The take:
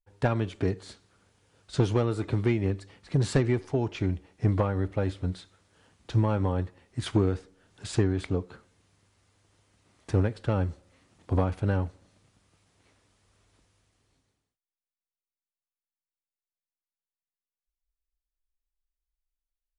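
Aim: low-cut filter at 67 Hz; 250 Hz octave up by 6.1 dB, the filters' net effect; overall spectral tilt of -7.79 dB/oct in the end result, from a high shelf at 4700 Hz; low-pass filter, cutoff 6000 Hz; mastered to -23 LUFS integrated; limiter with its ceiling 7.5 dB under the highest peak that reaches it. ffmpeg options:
-af "highpass=67,lowpass=6k,equalizer=f=250:t=o:g=8,highshelf=f=4.7k:g=8,volume=5.5dB,alimiter=limit=-10dB:level=0:latency=1"

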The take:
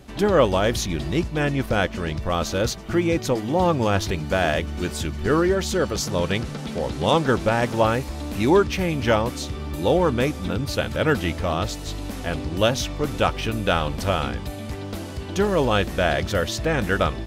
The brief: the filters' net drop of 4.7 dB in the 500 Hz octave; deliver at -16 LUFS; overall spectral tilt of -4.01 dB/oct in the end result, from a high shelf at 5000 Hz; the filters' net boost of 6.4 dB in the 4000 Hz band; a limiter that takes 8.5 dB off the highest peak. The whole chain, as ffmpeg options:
-af "equalizer=f=500:t=o:g=-6,equalizer=f=4k:t=o:g=6,highshelf=f=5k:g=5,volume=8.5dB,alimiter=limit=-3.5dB:level=0:latency=1"

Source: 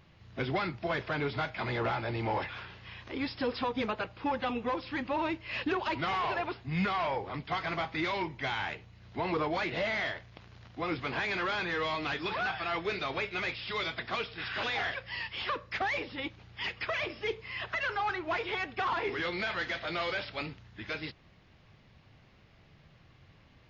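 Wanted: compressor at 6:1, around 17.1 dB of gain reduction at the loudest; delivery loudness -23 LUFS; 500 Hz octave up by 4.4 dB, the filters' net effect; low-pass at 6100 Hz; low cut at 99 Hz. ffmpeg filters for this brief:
-af "highpass=99,lowpass=6.1k,equalizer=f=500:t=o:g=5.5,acompressor=threshold=-43dB:ratio=6,volume=22dB"

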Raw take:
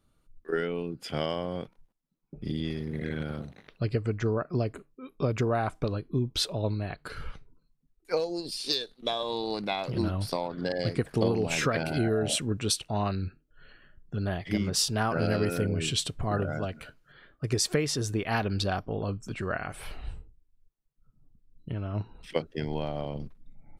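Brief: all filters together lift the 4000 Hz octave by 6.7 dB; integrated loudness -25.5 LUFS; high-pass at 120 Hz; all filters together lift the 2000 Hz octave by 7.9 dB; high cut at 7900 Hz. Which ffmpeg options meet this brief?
-af "highpass=120,lowpass=7.9k,equalizer=f=2k:t=o:g=9,equalizer=f=4k:t=o:g=6,volume=2.5dB"

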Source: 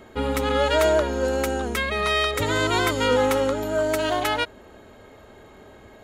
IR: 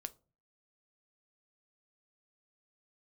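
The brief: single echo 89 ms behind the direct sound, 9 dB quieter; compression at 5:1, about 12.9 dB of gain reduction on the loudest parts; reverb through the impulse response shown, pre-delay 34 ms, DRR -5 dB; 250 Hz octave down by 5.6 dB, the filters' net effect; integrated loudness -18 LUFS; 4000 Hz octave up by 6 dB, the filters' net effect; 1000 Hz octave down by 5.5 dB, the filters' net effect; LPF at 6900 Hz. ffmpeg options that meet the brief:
-filter_complex "[0:a]lowpass=6.9k,equalizer=f=250:t=o:g=-6.5,equalizer=f=1k:t=o:g=-7.5,equalizer=f=4k:t=o:g=8.5,acompressor=threshold=-33dB:ratio=5,aecho=1:1:89:0.355,asplit=2[a][b];[1:a]atrim=start_sample=2205,adelay=34[c];[b][c]afir=irnorm=-1:irlink=0,volume=8.5dB[d];[a][d]amix=inputs=2:normalize=0,volume=9.5dB"

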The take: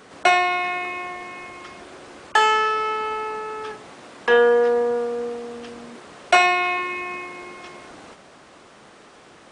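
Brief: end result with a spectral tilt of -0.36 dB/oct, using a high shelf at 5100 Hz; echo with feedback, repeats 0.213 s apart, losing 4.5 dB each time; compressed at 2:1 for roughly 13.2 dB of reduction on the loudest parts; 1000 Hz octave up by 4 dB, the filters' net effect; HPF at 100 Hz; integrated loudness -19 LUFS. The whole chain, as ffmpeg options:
-af "highpass=100,equalizer=f=1k:t=o:g=6,highshelf=f=5.1k:g=-7,acompressor=threshold=-34dB:ratio=2,aecho=1:1:213|426|639|852|1065|1278|1491|1704|1917:0.596|0.357|0.214|0.129|0.0772|0.0463|0.0278|0.0167|0.01,volume=11dB"

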